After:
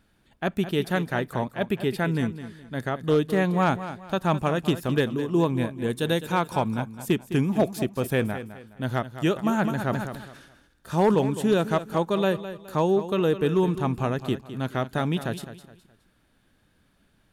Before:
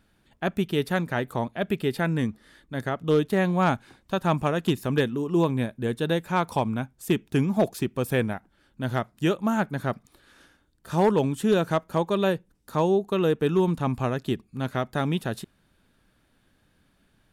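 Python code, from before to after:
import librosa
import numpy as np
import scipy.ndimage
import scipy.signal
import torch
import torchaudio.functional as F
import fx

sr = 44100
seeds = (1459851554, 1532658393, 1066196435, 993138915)

p1 = fx.high_shelf(x, sr, hz=4300.0, db=8.5, at=(5.9, 6.32))
p2 = p1 + fx.echo_feedback(p1, sr, ms=209, feedback_pct=33, wet_db=-12.5, dry=0)
y = fx.sustainer(p2, sr, db_per_s=51.0, at=(9.34, 11.15))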